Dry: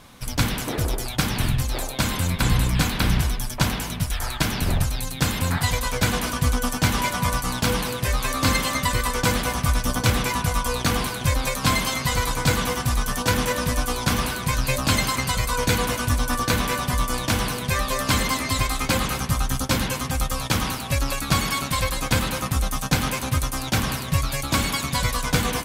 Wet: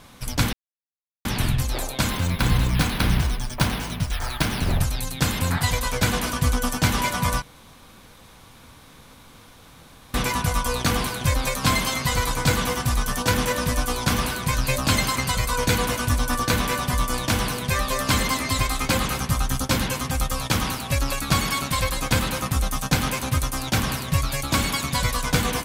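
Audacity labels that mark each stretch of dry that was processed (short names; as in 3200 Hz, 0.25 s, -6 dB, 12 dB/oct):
0.530000	1.250000	mute
2.100000	4.800000	careless resampling rate divided by 3×, down filtered, up hold
7.420000	10.140000	room tone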